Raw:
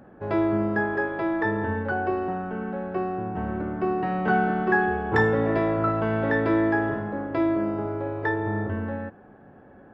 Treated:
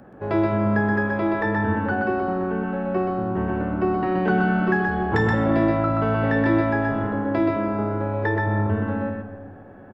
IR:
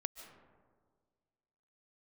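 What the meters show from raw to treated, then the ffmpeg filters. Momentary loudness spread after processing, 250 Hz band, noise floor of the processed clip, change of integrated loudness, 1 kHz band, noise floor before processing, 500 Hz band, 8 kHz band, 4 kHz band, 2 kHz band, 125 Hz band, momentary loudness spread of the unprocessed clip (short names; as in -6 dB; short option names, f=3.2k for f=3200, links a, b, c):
6 LU, +4.0 dB, -43 dBFS, +3.0 dB, +2.0 dB, -50 dBFS, +2.0 dB, n/a, +4.0 dB, +1.5 dB, +6.0 dB, 8 LU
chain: -filter_complex "[0:a]aecho=1:1:126:0.708,asplit=2[a][b];[1:a]atrim=start_sample=2205[c];[b][c]afir=irnorm=-1:irlink=0,volume=8dB[d];[a][d]amix=inputs=2:normalize=0,acrossover=split=390|3000[e][f][g];[f]acompressor=threshold=-16dB:ratio=6[h];[e][h][g]amix=inputs=3:normalize=0,volume=-6.5dB"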